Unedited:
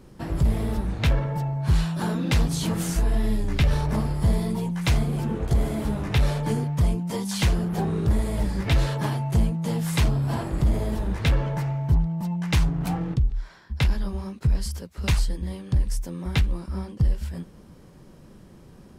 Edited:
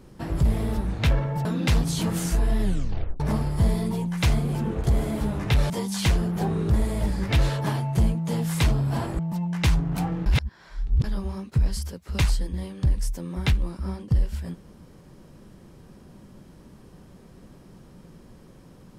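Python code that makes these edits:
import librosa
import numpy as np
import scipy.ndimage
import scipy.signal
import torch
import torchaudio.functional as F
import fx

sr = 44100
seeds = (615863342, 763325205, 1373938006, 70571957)

y = fx.edit(x, sr, fx.cut(start_s=1.45, length_s=0.64),
    fx.tape_stop(start_s=3.26, length_s=0.58),
    fx.cut(start_s=6.34, length_s=0.73),
    fx.cut(start_s=10.56, length_s=1.52),
    fx.reverse_span(start_s=13.15, length_s=0.78), tone=tone)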